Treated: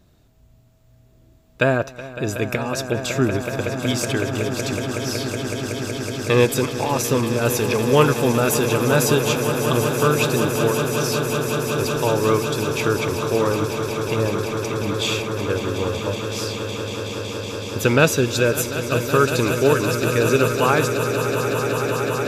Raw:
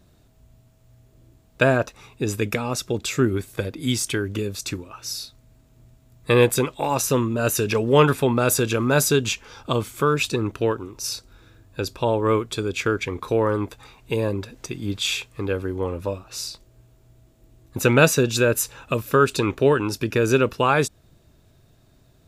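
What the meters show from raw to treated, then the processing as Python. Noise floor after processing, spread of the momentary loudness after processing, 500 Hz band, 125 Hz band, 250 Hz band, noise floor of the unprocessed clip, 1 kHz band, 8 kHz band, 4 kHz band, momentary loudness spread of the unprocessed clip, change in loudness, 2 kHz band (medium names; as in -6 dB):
-53 dBFS, 9 LU, +2.5 dB, +3.0 dB, +2.5 dB, -57 dBFS, +2.5 dB, +1.5 dB, +2.5 dB, 13 LU, +2.0 dB, +2.5 dB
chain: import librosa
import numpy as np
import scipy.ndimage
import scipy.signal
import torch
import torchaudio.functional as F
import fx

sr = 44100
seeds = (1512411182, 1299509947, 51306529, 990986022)

y = fx.peak_eq(x, sr, hz=9400.0, db=-6.5, octaves=0.26)
y = fx.echo_swell(y, sr, ms=186, loudest=8, wet_db=-12.0)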